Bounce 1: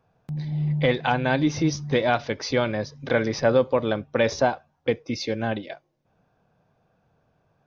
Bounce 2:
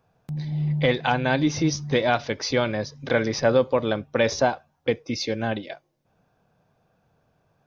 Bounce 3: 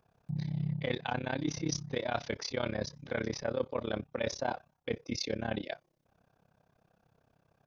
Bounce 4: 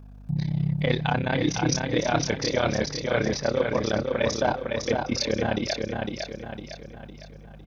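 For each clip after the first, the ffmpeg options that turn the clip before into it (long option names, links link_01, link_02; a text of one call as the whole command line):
ffmpeg -i in.wav -af "highshelf=frequency=4800:gain=6" out.wav
ffmpeg -i in.wav -af "areverse,acompressor=threshold=-27dB:ratio=6,areverse,tremolo=f=33:d=0.947" out.wav
ffmpeg -i in.wav -filter_complex "[0:a]aeval=exprs='val(0)+0.00251*(sin(2*PI*50*n/s)+sin(2*PI*2*50*n/s)/2+sin(2*PI*3*50*n/s)/3+sin(2*PI*4*50*n/s)/4+sin(2*PI*5*50*n/s)/5)':channel_layout=same,asplit=2[link_01][link_02];[link_02]aecho=0:1:506|1012|1518|2024|2530|3036:0.631|0.284|0.128|0.0575|0.0259|0.0116[link_03];[link_01][link_03]amix=inputs=2:normalize=0,volume=8.5dB" out.wav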